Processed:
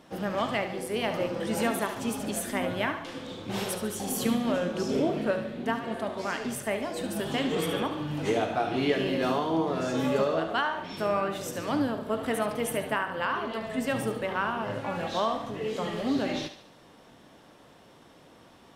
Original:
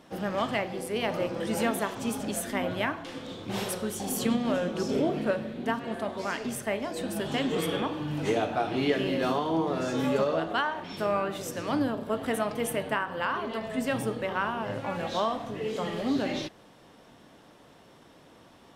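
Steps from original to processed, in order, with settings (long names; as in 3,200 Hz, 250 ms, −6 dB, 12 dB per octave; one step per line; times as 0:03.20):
feedback echo with a high-pass in the loop 72 ms, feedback 47%, level −10 dB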